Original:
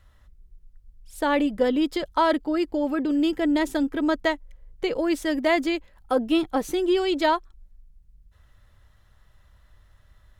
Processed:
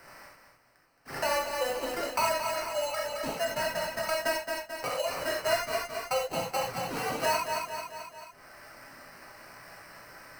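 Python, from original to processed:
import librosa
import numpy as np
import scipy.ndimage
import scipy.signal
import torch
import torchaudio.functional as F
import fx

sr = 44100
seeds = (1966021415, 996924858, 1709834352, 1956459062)

y = scipy.signal.sosfilt(scipy.signal.butter(12, 530.0, 'highpass', fs=sr, output='sos'), x)
y = fx.sample_hold(y, sr, seeds[0], rate_hz=3500.0, jitter_pct=0)
y = fx.echo_feedback(y, sr, ms=219, feedback_pct=34, wet_db=-7.5)
y = fx.rev_gated(y, sr, seeds[1], gate_ms=110, shape='flat', drr_db=-2.5)
y = fx.band_squash(y, sr, depth_pct=70)
y = y * 10.0 ** (-7.5 / 20.0)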